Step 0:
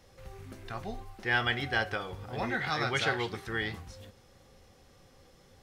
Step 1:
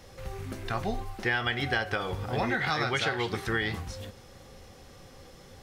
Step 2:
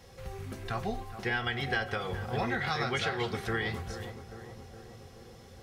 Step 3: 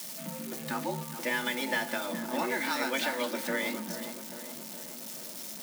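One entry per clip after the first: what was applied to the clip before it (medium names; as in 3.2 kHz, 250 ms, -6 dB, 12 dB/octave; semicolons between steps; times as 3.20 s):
compression 10:1, threshold -33 dBFS, peak gain reduction 11 dB; trim +8.5 dB
comb of notches 300 Hz; filtered feedback delay 418 ms, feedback 69%, low-pass 1.5 kHz, level -11.5 dB; trim -2 dB
zero-crossing glitches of -30.5 dBFS; frequency shift +130 Hz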